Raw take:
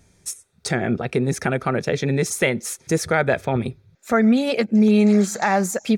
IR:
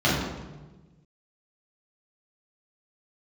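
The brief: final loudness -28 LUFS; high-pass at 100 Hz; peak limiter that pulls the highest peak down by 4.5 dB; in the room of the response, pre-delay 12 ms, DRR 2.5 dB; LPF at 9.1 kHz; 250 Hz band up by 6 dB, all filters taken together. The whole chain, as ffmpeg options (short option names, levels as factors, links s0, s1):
-filter_complex "[0:a]highpass=100,lowpass=9100,equalizer=f=250:t=o:g=7.5,alimiter=limit=0.447:level=0:latency=1,asplit=2[s0][s1];[1:a]atrim=start_sample=2205,adelay=12[s2];[s1][s2]afir=irnorm=-1:irlink=0,volume=0.0944[s3];[s0][s3]amix=inputs=2:normalize=0,volume=0.178"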